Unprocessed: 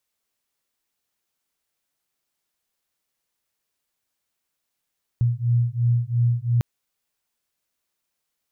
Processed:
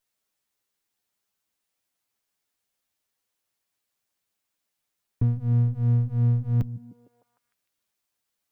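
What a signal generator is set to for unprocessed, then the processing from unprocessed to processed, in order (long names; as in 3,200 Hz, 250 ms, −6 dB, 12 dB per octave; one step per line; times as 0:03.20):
two tones that beat 118 Hz, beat 2.9 Hz, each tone −21 dBFS 1.40 s
lower of the sound and its delayed copy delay 9.8 ms
echo through a band-pass that steps 152 ms, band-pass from 160 Hz, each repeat 0.7 octaves, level −11.5 dB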